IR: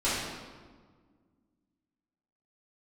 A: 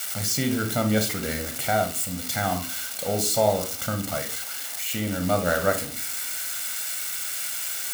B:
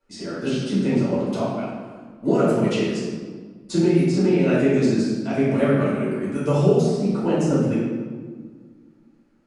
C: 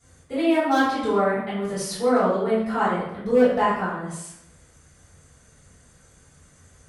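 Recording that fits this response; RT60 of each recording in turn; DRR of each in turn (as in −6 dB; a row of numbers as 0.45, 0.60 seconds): B; 0.45, 1.6, 0.80 seconds; 6.0, −12.0, −12.0 decibels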